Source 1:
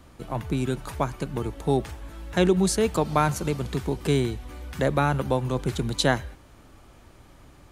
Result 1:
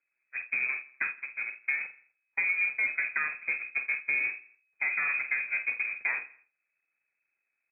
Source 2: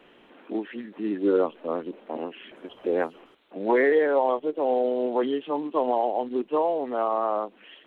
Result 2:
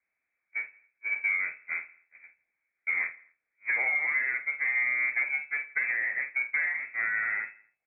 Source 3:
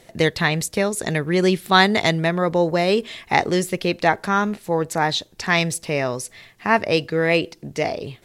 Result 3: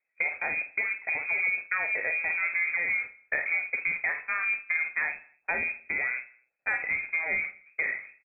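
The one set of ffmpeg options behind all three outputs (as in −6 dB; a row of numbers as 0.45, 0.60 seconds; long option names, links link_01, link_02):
-filter_complex "[0:a]aeval=exprs='val(0)+0.5*0.0668*sgn(val(0))':channel_layout=same,aemphasis=mode=reproduction:type=50fm,agate=range=-53dB:threshold=-21dB:ratio=16:detection=peak,equalizer=frequency=1600:width=3.7:gain=-8.5,acompressor=threshold=-26dB:ratio=6,asoftclip=type=tanh:threshold=-16.5dB,flanger=delay=1.7:depth=3:regen=-75:speed=1.9:shape=triangular,asplit=2[link_01][link_02];[link_02]adelay=48,volume=-9dB[link_03];[link_01][link_03]amix=inputs=2:normalize=0,aecho=1:1:83|166|249:0.106|0.0477|0.0214,lowpass=frequency=2200:width_type=q:width=0.5098,lowpass=frequency=2200:width_type=q:width=0.6013,lowpass=frequency=2200:width_type=q:width=0.9,lowpass=frequency=2200:width_type=q:width=2.563,afreqshift=-2600,volume=4dB"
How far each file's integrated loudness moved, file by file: −4.0, −2.5, −7.5 LU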